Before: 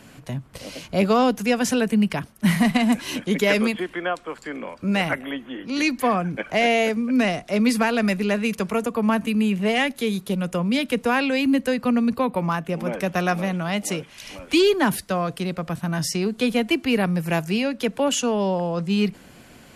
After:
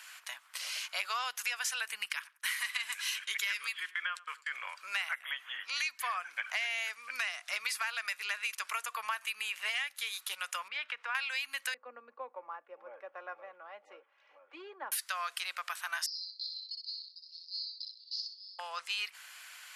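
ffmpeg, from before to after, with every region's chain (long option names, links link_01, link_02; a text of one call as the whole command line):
ffmpeg -i in.wav -filter_complex "[0:a]asettb=1/sr,asplit=3[link_01][link_02][link_03];[link_01]atrim=end=2.054[link_04];[link_02]atrim=start=2.05:end=4.53,asetpts=PTS-STARTPTS,afade=type=in:duration=0.004:curve=qsin,afade=type=out:start_time=2.476:duration=0.004:curve=qsin,equalizer=frequency=710:width=2:gain=-14,agate=range=-21dB:threshold=-41dB:ratio=16:release=100:detection=peak,asplit=2[link_05][link_06];[link_06]adelay=91,lowpass=frequency=2400:poles=1,volume=-21dB,asplit=2[link_07][link_08];[link_08]adelay=91,lowpass=frequency=2400:poles=1,volume=0.17[link_09];[link_05][link_07][link_09]amix=inputs=3:normalize=0,atrim=end_sample=109368[link_10];[link_03]atrim=start=4.526[link_11];[link_04][link_10]acrossfade=duration=0.004:curve1=hsin:curve2=qsin[link_12];[link_12][link_11]acrossfade=duration=0.004:curve1=qsin:curve2=hsin,asettb=1/sr,asplit=3[link_13][link_14][link_15];[link_13]atrim=end=10.684[link_16];[link_14]atrim=start=10.68:end=11.15,asetpts=PTS-STARTPTS,afade=type=in:duration=0.004:curve=qsin,afade=type=out:start_time=0.466:duration=0.004:curve=qsin,acompressor=threshold=-24dB:ratio=3:attack=3.2:release=140:knee=1:detection=peak,highpass=120,lowpass=2100[link_17];[link_15]atrim=start=11.146[link_18];[link_16][link_17]acrossfade=duration=0.004:curve1=hsin:curve2=qsin[link_19];[link_19][link_18]acrossfade=duration=0.004:curve1=qsin:curve2=hsin,asettb=1/sr,asplit=3[link_20][link_21][link_22];[link_20]atrim=end=11.744[link_23];[link_21]atrim=start=11.74:end=14.92,asetpts=PTS-STARTPTS,afade=type=in:duration=0.004:curve=qsin,afade=type=out:start_time=3.176:duration=0.004:curve=qsin,lowpass=frequency=440:width_type=q:width=2.4,aecho=1:1:3.6:0.46,atrim=end_sample=140238[link_24];[link_22]atrim=start=14.916[link_25];[link_23][link_24]acrossfade=duration=0.004:curve1=hsin:curve2=qsin[link_26];[link_26][link_25]acrossfade=duration=0.004:curve1=qsin:curve2=hsin,asettb=1/sr,asplit=3[link_27][link_28][link_29];[link_27]atrim=end=16.064[link_30];[link_28]atrim=start=16.06:end=18.59,asetpts=PTS-STARTPTS,afade=type=in:duration=0.004:curve=qsin,afade=type=out:start_time=2.526:duration=0.004:curve=qsin,asuperpass=centerf=4600:order=8:qfactor=4.4,aecho=1:1:62|124|186|248:0.631|0.164|0.0427|0.0111,atrim=end_sample=111573[link_31];[link_29]atrim=start=18.586[link_32];[link_30][link_31]acrossfade=duration=0.004:curve1=hsin:curve2=qsin[link_33];[link_33][link_32]acrossfade=duration=0.004:curve1=qsin:curve2=hsin,highpass=frequency=1200:width=0.5412,highpass=frequency=1200:width=1.3066,acompressor=threshold=-34dB:ratio=6,volume=2dB" out.wav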